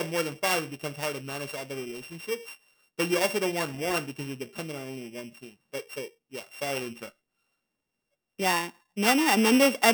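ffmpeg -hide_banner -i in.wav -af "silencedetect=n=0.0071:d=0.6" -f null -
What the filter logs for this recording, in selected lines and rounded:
silence_start: 7.09
silence_end: 8.39 | silence_duration: 1.30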